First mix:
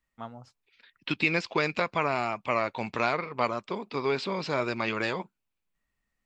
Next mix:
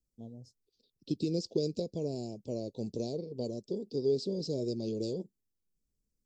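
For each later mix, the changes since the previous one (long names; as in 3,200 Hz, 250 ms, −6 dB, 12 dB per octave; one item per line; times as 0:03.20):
master: add elliptic band-stop filter 460–5,100 Hz, stop band 80 dB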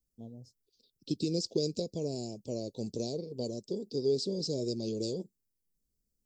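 second voice: add high-shelf EQ 5,200 Hz +12 dB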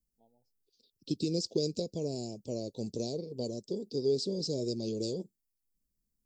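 first voice: add pair of resonant band-passes 1,300 Hz, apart 1.2 octaves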